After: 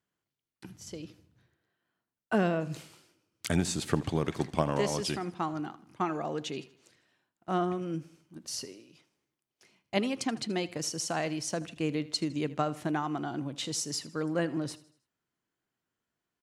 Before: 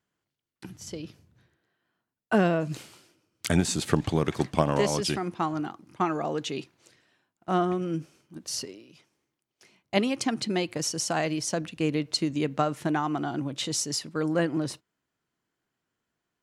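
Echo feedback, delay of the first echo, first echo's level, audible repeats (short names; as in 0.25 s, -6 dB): 44%, 79 ms, -18.5 dB, 3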